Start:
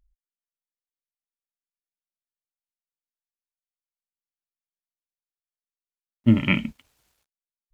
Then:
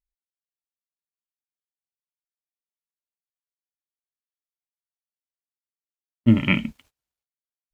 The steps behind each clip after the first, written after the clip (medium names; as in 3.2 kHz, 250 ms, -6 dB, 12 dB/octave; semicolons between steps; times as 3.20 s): gate -54 dBFS, range -23 dB; trim +1 dB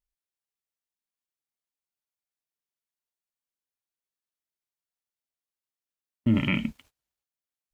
peak limiter -13.5 dBFS, peak gain reduction 8.5 dB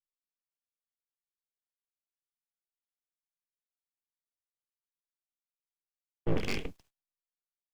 octave divider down 2 oct, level -6 dB; full-wave rectifier; three bands expanded up and down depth 40%; trim -6.5 dB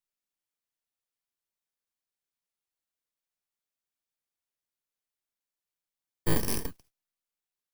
bit-reversed sample order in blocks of 32 samples; trim +3 dB